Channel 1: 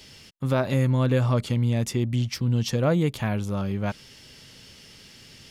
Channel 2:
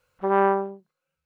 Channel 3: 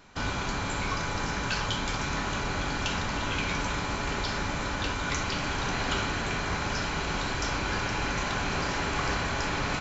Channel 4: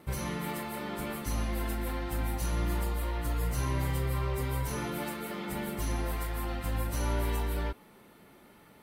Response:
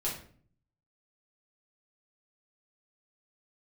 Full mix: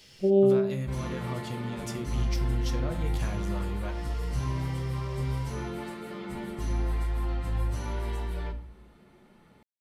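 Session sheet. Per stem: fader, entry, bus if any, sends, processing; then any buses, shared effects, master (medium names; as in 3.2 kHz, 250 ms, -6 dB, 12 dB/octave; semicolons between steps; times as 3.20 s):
-8.5 dB, 0.00 s, send -7.5 dB, bass shelf 450 Hz -9 dB; compression, threshold -30 dBFS, peak gain reduction 8.5 dB
-1.5 dB, 0.00 s, send -10 dB, inverse Chebyshev band-stop 890–2200 Hz, stop band 40 dB
mute
-7.0 dB, 0.80 s, send -8 dB, low-pass 7.9 kHz 12 dB/octave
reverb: on, RT60 0.50 s, pre-delay 5 ms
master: bass shelf 260 Hz +6.5 dB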